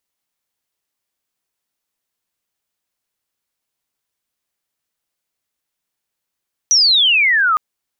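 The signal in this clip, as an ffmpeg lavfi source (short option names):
-f lavfi -i "aevalsrc='pow(10,(-8.5-3*t/0.86)/20)*sin(2*PI*6000*0.86/log(1200/6000)*(exp(log(1200/6000)*t/0.86)-1))':d=0.86:s=44100"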